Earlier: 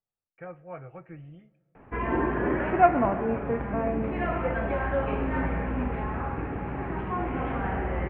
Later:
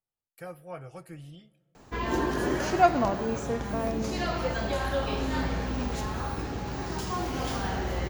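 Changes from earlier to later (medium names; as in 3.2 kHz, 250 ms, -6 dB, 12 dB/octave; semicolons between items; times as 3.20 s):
background: send off; master: remove steep low-pass 2.5 kHz 48 dB/octave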